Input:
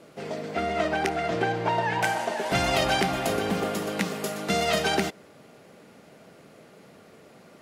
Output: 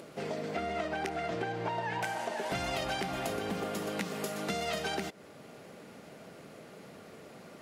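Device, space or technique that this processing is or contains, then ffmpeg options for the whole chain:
upward and downward compression: -af "acompressor=mode=upward:threshold=0.00501:ratio=2.5,acompressor=threshold=0.0224:ratio=4"

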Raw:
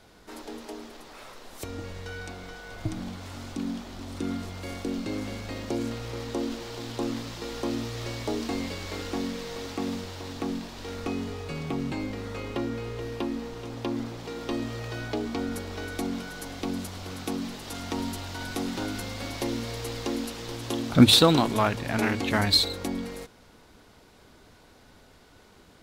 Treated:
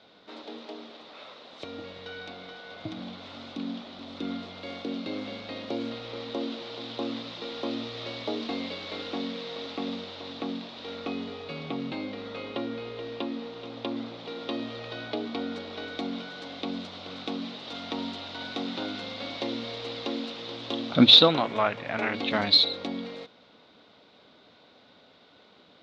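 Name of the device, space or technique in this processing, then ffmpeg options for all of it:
kitchen radio: -filter_complex "[0:a]highpass=210,equalizer=f=370:t=q:w=4:g=-5,equalizer=f=580:t=q:w=4:g=3,equalizer=f=910:t=q:w=4:g=-3,equalizer=f=1700:t=q:w=4:g=-5,equalizer=f=3700:t=q:w=4:g=8,lowpass=f=4300:w=0.5412,lowpass=f=4300:w=1.3066,asettb=1/sr,asplit=3[s0][s1][s2];[s0]atrim=end=21.284[s3];[s1]atrim=start=21.28:end=22.14,asetpts=PTS-STARTPTS,afade=t=in:d=0.004:c=qsin,afade=t=out:st=0.856:d=0.004:c=qsin,equalizer=f=250:t=o:w=1:g=-6,equalizer=f=2000:t=o:w=1:g=5,equalizer=f=4000:t=o:w=1:g=-10[s4];[s2]atrim=start=22.136[s5];[s3][s4]acrossfade=d=0.004:c1=hsin:c2=qsin[s6];[s6][s5]acrossfade=d=0.004:c1=qsin:c2=hsin"

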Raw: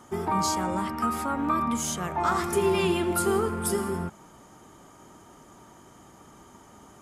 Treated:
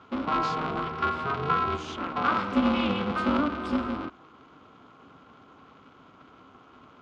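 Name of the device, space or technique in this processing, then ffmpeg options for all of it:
ring modulator pedal into a guitar cabinet: -af "highpass=f=260:p=1,aeval=exprs='val(0)*sgn(sin(2*PI*150*n/s))':c=same,highpass=77,equalizer=f=270:t=q:w=4:g=9,equalizer=f=530:t=q:w=4:g=-5,equalizer=f=800:t=q:w=4:g=-4,equalizer=f=1300:t=q:w=4:g=6,equalizer=f=1800:t=q:w=4:g=-9,lowpass=f=3700:w=0.5412,lowpass=f=3700:w=1.3066"

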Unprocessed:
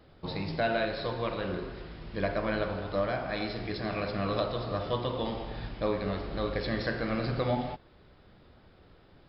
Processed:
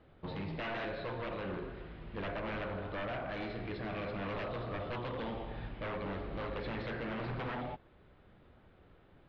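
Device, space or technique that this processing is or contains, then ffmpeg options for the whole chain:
synthesiser wavefolder: -af "aeval=exprs='0.0355*(abs(mod(val(0)/0.0355+3,4)-2)-1)':c=same,lowpass=f=3200:w=0.5412,lowpass=f=3200:w=1.3066,volume=0.631"

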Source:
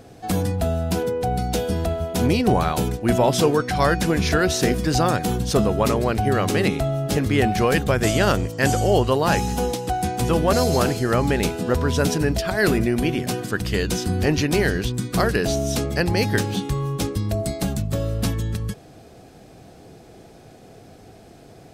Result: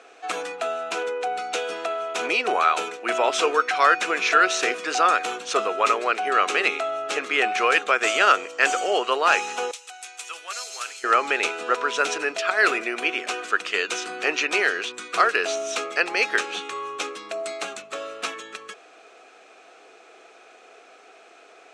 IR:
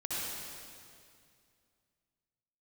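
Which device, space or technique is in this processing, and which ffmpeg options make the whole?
phone speaker on a table: -filter_complex "[0:a]highpass=f=460:w=0.5412,highpass=f=460:w=1.3066,equalizer=f=560:t=q:w=4:g=-6,equalizer=f=870:t=q:w=4:g=-4,equalizer=f=1300:t=q:w=4:g=10,equalizer=f=2500:t=q:w=4:g=9,equalizer=f=4900:t=q:w=4:g=-7,lowpass=f=7500:w=0.5412,lowpass=f=7500:w=1.3066,asettb=1/sr,asplit=3[s0][s1][s2];[s0]atrim=end=9.714[s3];[s1]atrim=start=9.71:end=11.04,asetpts=PTS-STARTPTS,afade=t=in:d=0.004:c=qsin,afade=t=out:st=1.326:d=0.004:c=qsin,aderivative[s4];[s2]atrim=start=11.036[s5];[s3][s4]acrossfade=d=0.004:c1=hsin:c2=qsin[s6];[s6][s5]acrossfade=d=0.004:c1=qsin:c2=hsin,volume=1.12"

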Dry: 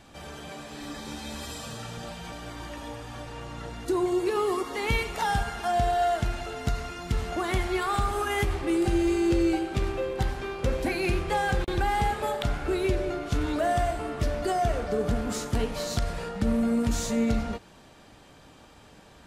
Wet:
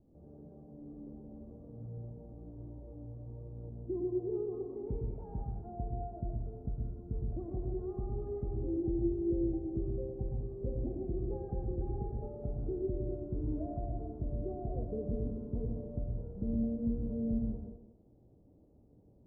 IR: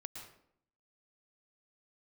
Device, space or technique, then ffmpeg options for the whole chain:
next room: -filter_complex "[0:a]lowpass=f=490:w=0.5412,lowpass=f=490:w=1.3066[s0];[1:a]atrim=start_sample=2205[s1];[s0][s1]afir=irnorm=-1:irlink=0,volume=0.596"

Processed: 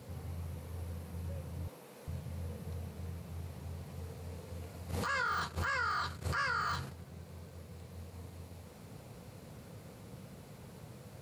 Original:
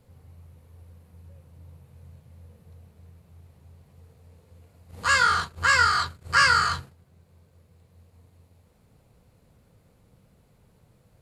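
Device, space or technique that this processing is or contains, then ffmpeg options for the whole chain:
broadcast voice chain: -filter_complex "[0:a]highpass=95,deesser=0.95,acompressor=threshold=0.0126:ratio=4,equalizer=f=5600:t=o:w=0.39:g=3,alimiter=level_in=4.22:limit=0.0631:level=0:latency=1:release=126,volume=0.237,asettb=1/sr,asplit=3[s0][s1][s2];[s0]atrim=end=1.684[s3];[s1]atrim=start=1.68:end=2.08,asetpts=PTS-STARTPTS,afade=t=in:d=0.004:c=qsin,afade=t=out:st=0.396:d=0.004:c=qsin,highpass=f=240:w=0.5412,highpass=f=240:w=1.3066[s4];[s2]atrim=start=2.076[s5];[s3][s4]acrossfade=d=0.004:c1=hsin:c2=qsin[s6];[s6][s5]acrossfade=d=0.004:c1=qsin:c2=hsin,volume=3.35"

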